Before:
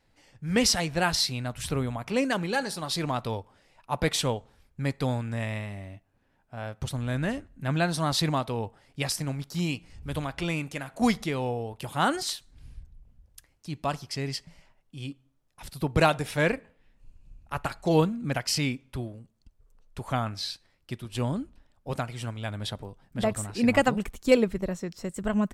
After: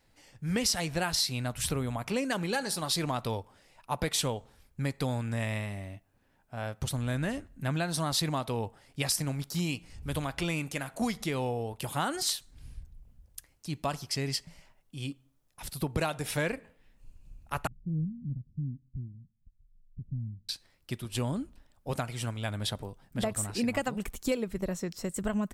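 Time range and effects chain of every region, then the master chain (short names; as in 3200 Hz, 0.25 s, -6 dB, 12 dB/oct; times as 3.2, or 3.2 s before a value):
17.67–20.49 inverse Chebyshev low-pass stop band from 1100 Hz, stop band 80 dB + bell 68 Hz -3.5 dB 2.5 oct
whole clip: compressor 6:1, threshold -27 dBFS; high shelf 7200 Hz +8.5 dB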